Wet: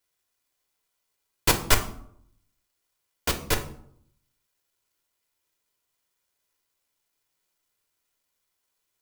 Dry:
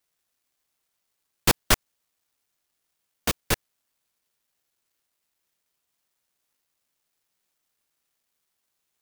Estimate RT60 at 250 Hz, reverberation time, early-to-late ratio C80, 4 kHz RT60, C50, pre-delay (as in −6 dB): 0.85 s, 0.65 s, 15.0 dB, 0.40 s, 11.0 dB, 3 ms